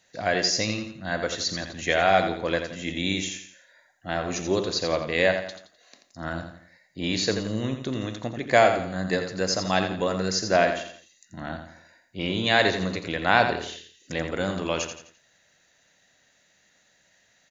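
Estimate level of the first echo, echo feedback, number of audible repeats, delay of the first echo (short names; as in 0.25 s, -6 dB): -8.0 dB, 39%, 4, 85 ms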